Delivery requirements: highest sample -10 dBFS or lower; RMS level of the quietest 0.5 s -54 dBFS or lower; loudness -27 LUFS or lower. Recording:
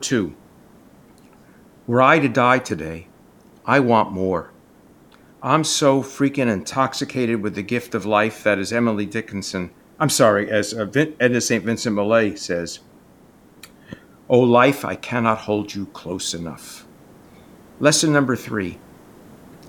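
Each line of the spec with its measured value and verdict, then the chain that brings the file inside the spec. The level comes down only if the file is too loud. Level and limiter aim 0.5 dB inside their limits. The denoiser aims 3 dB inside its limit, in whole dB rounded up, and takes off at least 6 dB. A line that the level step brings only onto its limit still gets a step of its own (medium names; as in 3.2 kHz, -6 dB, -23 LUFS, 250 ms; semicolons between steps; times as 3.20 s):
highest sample -1.5 dBFS: fail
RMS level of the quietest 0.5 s -50 dBFS: fail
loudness -19.5 LUFS: fail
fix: trim -8 dB; peak limiter -10.5 dBFS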